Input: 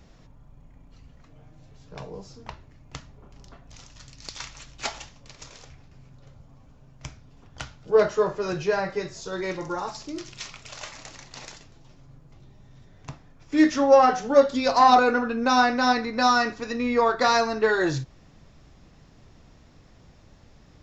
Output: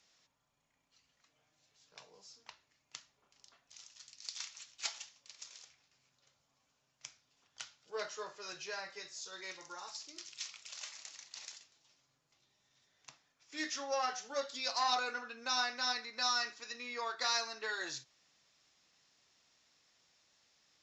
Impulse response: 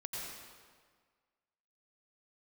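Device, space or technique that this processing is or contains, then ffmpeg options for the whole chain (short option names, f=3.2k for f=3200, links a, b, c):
piezo pickup straight into a mixer: -af "lowpass=6.6k,aderivative"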